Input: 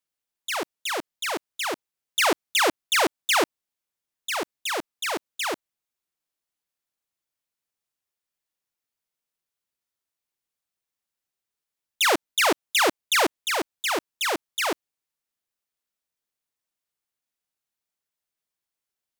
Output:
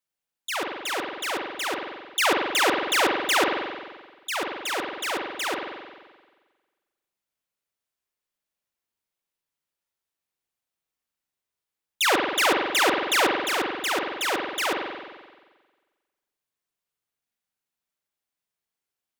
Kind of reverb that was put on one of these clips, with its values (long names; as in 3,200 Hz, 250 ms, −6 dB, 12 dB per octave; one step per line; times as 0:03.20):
spring reverb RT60 1.4 s, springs 44 ms, chirp 45 ms, DRR 1 dB
level −1.5 dB